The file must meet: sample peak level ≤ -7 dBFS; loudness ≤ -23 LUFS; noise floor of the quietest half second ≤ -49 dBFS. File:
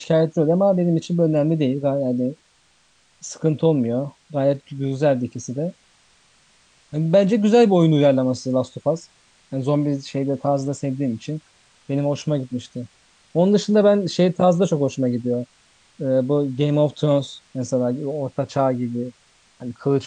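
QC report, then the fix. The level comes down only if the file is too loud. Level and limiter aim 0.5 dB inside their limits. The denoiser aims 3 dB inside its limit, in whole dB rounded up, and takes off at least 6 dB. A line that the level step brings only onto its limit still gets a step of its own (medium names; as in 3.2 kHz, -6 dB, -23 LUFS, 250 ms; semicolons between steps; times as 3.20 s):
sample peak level -5.5 dBFS: fail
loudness -20.5 LUFS: fail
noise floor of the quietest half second -59 dBFS: pass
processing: trim -3 dB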